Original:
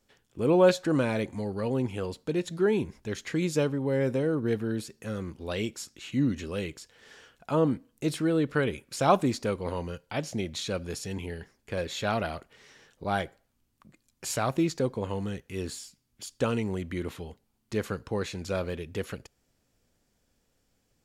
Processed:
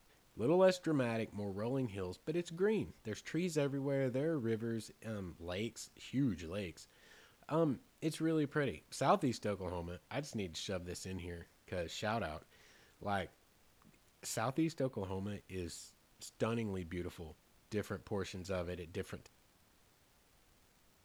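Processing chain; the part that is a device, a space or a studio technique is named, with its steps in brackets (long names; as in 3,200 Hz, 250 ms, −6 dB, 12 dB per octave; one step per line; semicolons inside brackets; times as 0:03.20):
vinyl LP (tape wow and flutter; surface crackle; pink noise bed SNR 30 dB)
0:14.51–0:15.00: parametric band 6,200 Hz −6 dB 0.77 octaves
level −9 dB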